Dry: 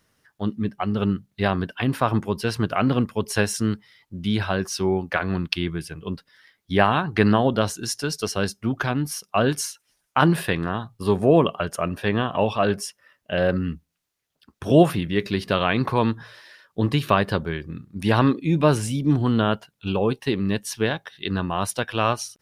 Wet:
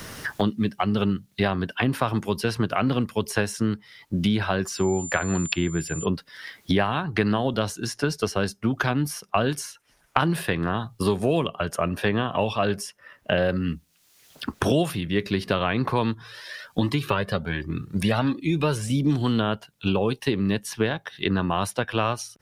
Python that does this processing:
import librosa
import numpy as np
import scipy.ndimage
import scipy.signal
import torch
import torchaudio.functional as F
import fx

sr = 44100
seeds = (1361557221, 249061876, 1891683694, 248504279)

y = fx.dmg_tone(x, sr, hz=7200.0, level_db=-34.0, at=(4.66, 6.04), fade=0.02)
y = fx.comb_cascade(y, sr, direction='rising', hz=1.3, at=(16.14, 18.9))
y = fx.band_squash(y, sr, depth_pct=100)
y = y * librosa.db_to_amplitude(-2.0)